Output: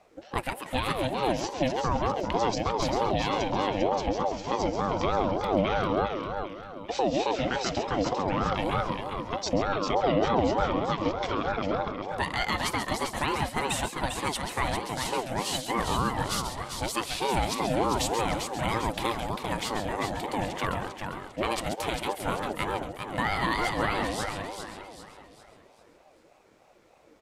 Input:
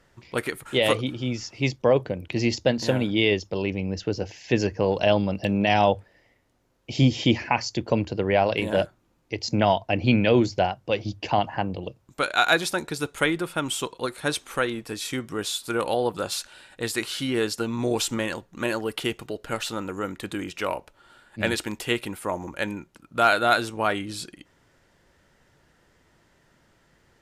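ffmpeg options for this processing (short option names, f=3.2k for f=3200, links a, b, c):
-filter_complex "[0:a]equalizer=f=78:w=0.86:g=11.5,asplit=2[a][b];[b]aecho=0:1:136:0.355[c];[a][c]amix=inputs=2:normalize=0,alimiter=limit=-14.5dB:level=0:latency=1:release=125,asplit=2[d][e];[e]aecho=0:1:398|796|1194|1592|1990:0.501|0.2|0.0802|0.0321|0.0128[f];[d][f]amix=inputs=2:normalize=0,aeval=exprs='val(0)*sin(2*PI*540*n/s+540*0.3/3.3*sin(2*PI*3.3*n/s))':c=same"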